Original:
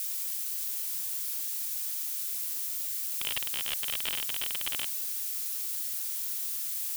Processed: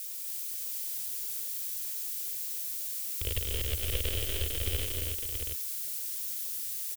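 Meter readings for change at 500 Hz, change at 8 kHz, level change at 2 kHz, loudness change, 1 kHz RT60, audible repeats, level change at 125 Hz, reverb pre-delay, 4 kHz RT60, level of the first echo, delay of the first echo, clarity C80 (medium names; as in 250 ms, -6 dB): +11.0 dB, -2.5 dB, -3.0 dB, -2.0 dB, no reverb, 5, no reading, no reverb, no reverb, -10.5 dB, 139 ms, no reverb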